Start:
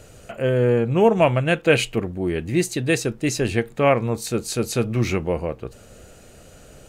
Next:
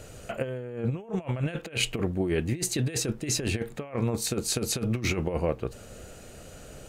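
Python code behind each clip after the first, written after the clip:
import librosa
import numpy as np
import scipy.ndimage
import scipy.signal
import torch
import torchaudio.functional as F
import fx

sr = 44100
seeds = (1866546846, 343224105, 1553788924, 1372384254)

y = fx.over_compress(x, sr, threshold_db=-24.0, ratio=-0.5)
y = y * 10.0 ** (-4.0 / 20.0)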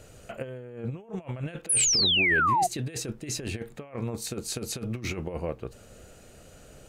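y = fx.spec_paint(x, sr, seeds[0], shape='fall', start_s=1.69, length_s=0.98, low_hz=680.0, high_hz=11000.0, level_db=-18.0)
y = y * 10.0 ** (-5.0 / 20.0)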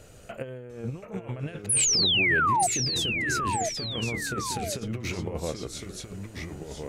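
y = fx.echo_pitch(x, sr, ms=697, semitones=-2, count=2, db_per_echo=-6.0)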